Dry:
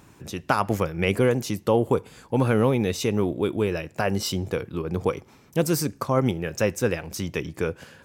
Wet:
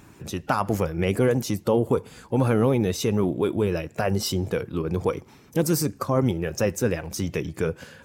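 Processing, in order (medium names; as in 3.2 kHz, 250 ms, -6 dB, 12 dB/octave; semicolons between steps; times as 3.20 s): coarse spectral quantiser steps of 15 dB; dynamic bell 2.7 kHz, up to -4 dB, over -42 dBFS, Q 0.88; in parallel at -0.5 dB: peak limiter -18 dBFS, peak gain reduction 9.5 dB; on the sum: trim -3 dB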